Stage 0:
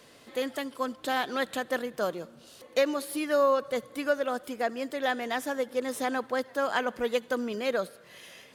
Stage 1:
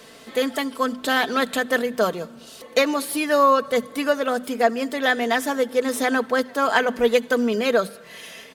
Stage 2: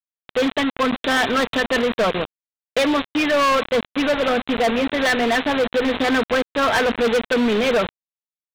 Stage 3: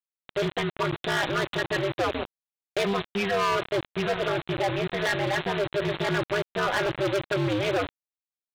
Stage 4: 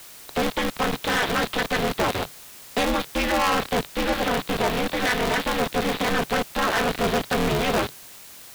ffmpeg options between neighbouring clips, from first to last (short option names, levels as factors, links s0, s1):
-af "bandreject=f=50:t=h:w=6,bandreject=f=100:t=h:w=6,bandreject=f=150:t=h:w=6,bandreject=f=200:t=h:w=6,bandreject=f=250:t=h:w=6,aecho=1:1:4.5:0.48,volume=2.66"
-af "aresample=8000,acrusher=bits=4:mix=0:aa=0.000001,aresample=44100,volume=11.2,asoftclip=hard,volume=0.0891,volume=2"
-af "aeval=exprs='val(0)*sin(2*PI*100*n/s)':c=same,volume=0.596"
-af "aeval=exprs='val(0)+0.5*0.0188*sgn(val(0))':c=same,afreqshift=-22,aeval=exprs='val(0)*sgn(sin(2*PI*140*n/s))':c=same,volume=1.26"